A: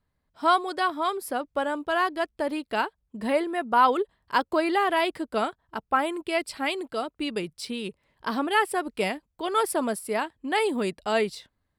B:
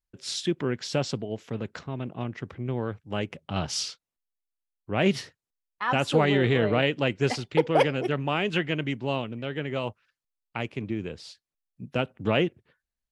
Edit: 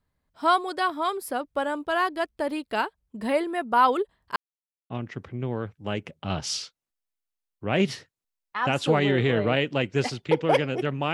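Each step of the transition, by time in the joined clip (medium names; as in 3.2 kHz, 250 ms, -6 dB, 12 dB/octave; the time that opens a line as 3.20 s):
A
4.36–4.90 s: mute
4.90 s: go over to B from 2.16 s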